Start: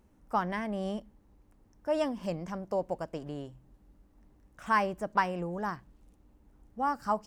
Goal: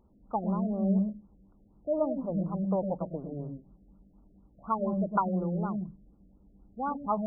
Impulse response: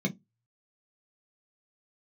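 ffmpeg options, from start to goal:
-filter_complex "[0:a]asettb=1/sr,asplit=3[link_01][link_02][link_03];[link_01]atrim=end=5.544[link_04];[link_02]atrim=start=5.54:end=6.92,asetpts=PTS-STARTPTS,afade=type=in:duration=0.004:curve=qsin,afade=type=out:start_time=1.376:duration=0.004:curve=qsin,equalizer=frequency=1000:width=1.9:gain=-4.5[link_05];[link_03]atrim=start=6.916[link_06];[link_04][link_05]acrossfade=duration=0.004:curve1=hsin:curve2=qsin[link_07];[link_07][link_06]acrossfade=duration=0.004:curve1=qsin:curve2=hsin,asplit=2[link_08][link_09];[1:a]atrim=start_sample=2205,afade=type=out:start_time=0.22:duration=0.01,atrim=end_sample=10143,adelay=102[link_10];[link_09][link_10]afir=irnorm=-1:irlink=0,volume=-18dB[link_11];[link_08][link_11]amix=inputs=2:normalize=0,afftfilt=real='re*lt(b*sr/1024,690*pow(1500/690,0.5+0.5*sin(2*PI*4.1*pts/sr)))':imag='im*lt(b*sr/1024,690*pow(1500/690,0.5+0.5*sin(2*PI*4.1*pts/sr)))':win_size=1024:overlap=0.75"

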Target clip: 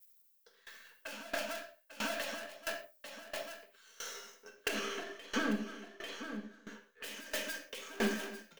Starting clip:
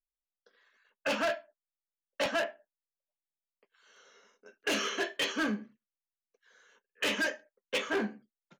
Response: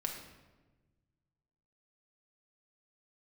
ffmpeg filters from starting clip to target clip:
-filter_complex "[0:a]aeval=exprs='if(lt(val(0),0),0.447*val(0),val(0))':channel_layout=same,aemphasis=mode=production:type=riaa,aecho=1:1:281:0.106,alimiter=level_in=6.5dB:limit=-24dB:level=0:latency=1,volume=-6.5dB,asettb=1/sr,asplit=3[link_01][link_02][link_03];[link_01]atrim=end=4.684[link_04];[link_02]atrim=start=4.68:end=7.04,asetpts=PTS-STARTPTS,afade=type=in:duration=0.004:curve=qsin,afade=type=out:start_time=2.356:duration=0.004:curve=qsin,lowpass=frequency=1400:poles=1[link_05];[link_03]atrim=start=7.036[link_06];[link_04][link_05]acrossfade=duration=0.004:curve1=hsin:curve2=qsin[link_07];[link_07][link_06]acrossfade=duration=0.004:curve1=qsin:curve2=hsin,aecho=1:1:844:0.355,acompressor=threshold=-47dB:ratio=4,equalizer=frequency=160:width=0.36:gain=6[link_08];[1:a]atrim=start_sample=2205,atrim=end_sample=6615,asetrate=48510,aresample=44100[link_09];[link_08][link_09]afir=irnorm=-1:irlink=0,aeval=exprs='val(0)*pow(10,-20*if(lt(mod(1.5*n/s,1),2*abs(1.5)/1000),1-mod(1.5*n/s,1)/(2*abs(1.5)/1000),(mod(1.5*n/s,1)-2*abs(1.5)/1000)/(1-2*abs(1.5)/1000))/20)':channel_layout=same,volume=16.5dB"

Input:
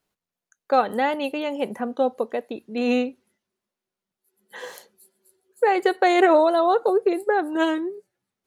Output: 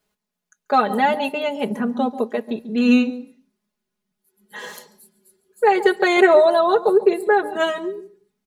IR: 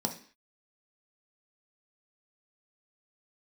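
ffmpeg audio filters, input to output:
-filter_complex "[0:a]aecho=1:1:4.8:0.94,asplit=2[link_01][link_02];[1:a]atrim=start_sample=2205,adelay=139[link_03];[link_02][link_03]afir=irnorm=-1:irlink=0,volume=-21.5dB[link_04];[link_01][link_04]amix=inputs=2:normalize=0,asubboost=boost=3:cutoff=220,volume=1.5dB"

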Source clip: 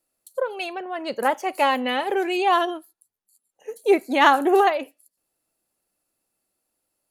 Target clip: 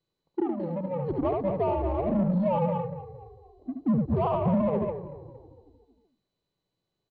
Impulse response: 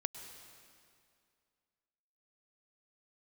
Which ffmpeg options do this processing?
-filter_complex "[0:a]aeval=exprs='if(lt(val(0),0),0.708*val(0),val(0))':channel_layout=same,asplit=2[link_01][link_02];[link_02]aecho=0:1:72.89|215.7:0.562|0.282[link_03];[link_01][link_03]amix=inputs=2:normalize=0,acompressor=threshold=-21dB:ratio=4,asoftclip=type=hard:threshold=-20.5dB,asuperstop=centerf=2500:order=20:qfactor=0.81,asplit=2[link_04][link_05];[link_05]asplit=5[link_06][link_07][link_08][link_09][link_10];[link_06]adelay=231,afreqshift=-31,volume=-14dB[link_11];[link_07]adelay=462,afreqshift=-62,volume=-19.7dB[link_12];[link_08]adelay=693,afreqshift=-93,volume=-25.4dB[link_13];[link_09]adelay=924,afreqshift=-124,volume=-31dB[link_14];[link_10]adelay=1155,afreqshift=-155,volume=-36.7dB[link_15];[link_11][link_12][link_13][link_14][link_15]amix=inputs=5:normalize=0[link_16];[link_04][link_16]amix=inputs=2:normalize=0,adynamicsmooth=sensitivity=2.5:basefreq=1700,equalizer=frequency=330:width=2.5:gain=3,highpass=frequency=220:width_type=q:width=0.5412,highpass=frequency=220:width_type=q:width=1.307,lowpass=frequency=3500:width_type=q:width=0.5176,lowpass=frequency=3500:width_type=q:width=0.7071,lowpass=frequency=3500:width_type=q:width=1.932,afreqshift=-180" -ar 16000 -c:a mp2 -b:a 64k

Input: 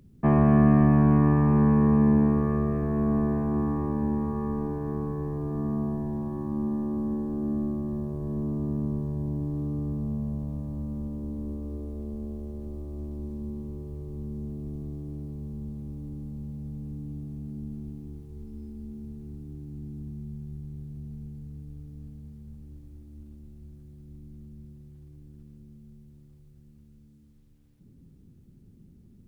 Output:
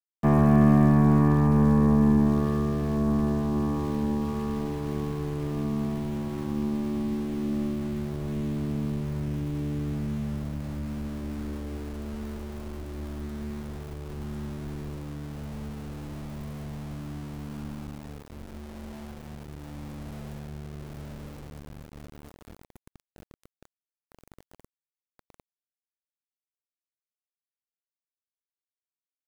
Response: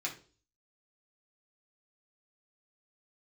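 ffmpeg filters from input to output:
-af "aeval=exprs='val(0)*gte(abs(val(0)),0.0112)':channel_layout=same,aeval=exprs='0.376*(cos(1*acos(clip(val(0)/0.376,-1,1)))-cos(1*PI/2))+0.0168*(cos(6*acos(clip(val(0)/0.376,-1,1)))-cos(6*PI/2))':channel_layout=same"

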